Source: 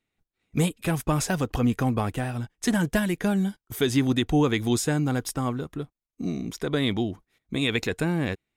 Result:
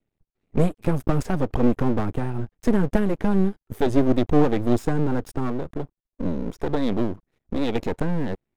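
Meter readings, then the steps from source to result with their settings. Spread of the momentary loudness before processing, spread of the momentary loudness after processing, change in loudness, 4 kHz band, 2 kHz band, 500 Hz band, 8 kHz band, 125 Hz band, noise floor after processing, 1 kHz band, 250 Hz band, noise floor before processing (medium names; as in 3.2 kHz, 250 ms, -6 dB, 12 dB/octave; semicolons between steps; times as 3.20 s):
10 LU, 10 LU, +1.5 dB, -9.5 dB, -5.5 dB, +4.0 dB, under -10 dB, +1.0 dB, under -85 dBFS, +2.0 dB, +2.5 dB, under -85 dBFS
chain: tilt shelf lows +9.5 dB, about 1.2 kHz; half-wave rectifier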